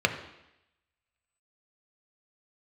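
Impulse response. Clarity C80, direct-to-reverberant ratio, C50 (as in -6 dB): 12.0 dB, 5.0 dB, 10.0 dB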